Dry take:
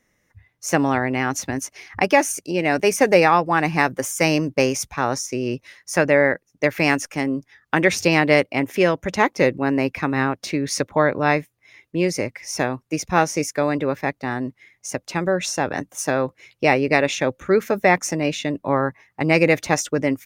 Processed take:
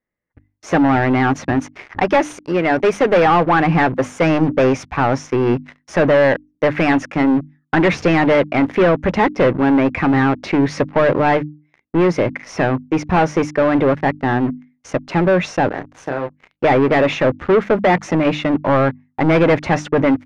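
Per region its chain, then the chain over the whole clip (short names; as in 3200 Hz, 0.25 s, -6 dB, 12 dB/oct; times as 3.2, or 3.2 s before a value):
2–3.25 high shelf 4500 Hz +9.5 dB + upward expander, over -23 dBFS
15.7–16.64 compressor 2:1, threshold -41 dBFS + doubler 29 ms -6 dB
whole clip: sample leveller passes 5; LPF 2000 Hz 12 dB/oct; notches 50/100/150/200/250/300 Hz; gain -6 dB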